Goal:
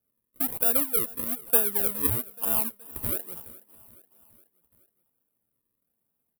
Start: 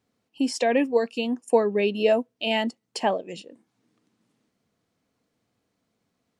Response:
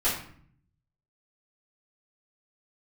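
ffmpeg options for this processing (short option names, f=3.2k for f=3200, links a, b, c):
-af "acrusher=samples=41:mix=1:aa=0.000001:lfo=1:lforange=41:lforate=1.1,aecho=1:1:421|842|1263|1684:0.0891|0.0508|0.029|0.0165,aexciter=amount=15.5:drive=7.4:freq=9.3k,volume=-12dB"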